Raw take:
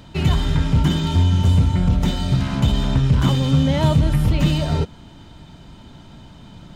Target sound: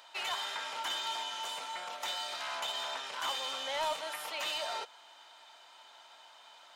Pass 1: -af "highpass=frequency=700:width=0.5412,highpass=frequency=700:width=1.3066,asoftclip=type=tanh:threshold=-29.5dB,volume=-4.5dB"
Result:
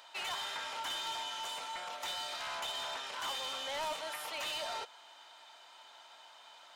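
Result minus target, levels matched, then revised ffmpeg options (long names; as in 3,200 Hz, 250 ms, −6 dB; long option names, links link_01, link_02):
soft clipping: distortion +7 dB
-af "highpass=frequency=700:width=0.5412,highpass=frequency=700:width=1.3066,asoftclip=type=tanh:threshold=-22.5dB,volume=-4.5dB"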